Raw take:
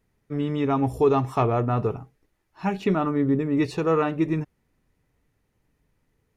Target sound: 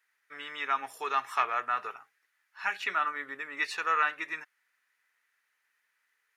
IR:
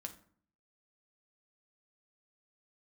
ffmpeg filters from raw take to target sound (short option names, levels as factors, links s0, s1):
-af "highpass=f=1600:t=q:w=2.7"